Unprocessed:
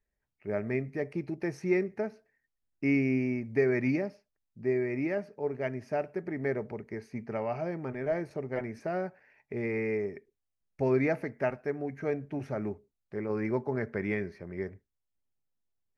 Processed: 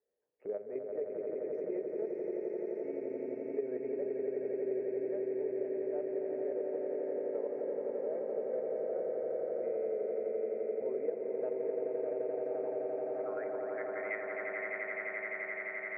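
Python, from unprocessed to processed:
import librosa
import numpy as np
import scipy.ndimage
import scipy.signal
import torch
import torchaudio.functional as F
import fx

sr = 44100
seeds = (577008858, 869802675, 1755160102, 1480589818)

p1 = fx.filter_sweep_bandpass(x, sr, from_hz=480.0, to_hz=2000.0, start_s=11.91, end_s=13.84, q=7.0)
p2 = fx.echo_diffused(p1, sr, ms=671, feedback_pct=52, wet_db=-8)
p3 = fx.level_steps(p2, sr, step_db=10)
p4 = fx.low_shelf(p3, sr, hz=170.0, db=-9.0)
p5 = p4 + fx.echo_swell(p4, sr, ms=86, loudest=8, wet_db=-6, dry=0)
p6 = fx.band_squash(p5, sr, depth_pct=70)
y = p6 * librosa.db_to_amplitude(3.5)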